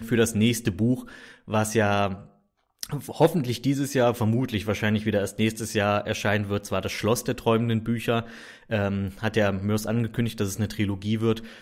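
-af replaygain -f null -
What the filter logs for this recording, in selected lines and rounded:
track_gain = +5.8 dB
track_peak = 0.252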